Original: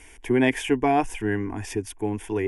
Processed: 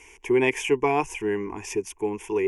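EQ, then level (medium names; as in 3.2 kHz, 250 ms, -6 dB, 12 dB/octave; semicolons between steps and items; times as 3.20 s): bass shelf 91 Hz -11 dB; dynamic bell 9.7 kHz, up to +5 dB, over -54 dBFS, Q 1.6; rippled EQ curve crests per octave 0.76, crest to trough 11 dB; -1.5 dB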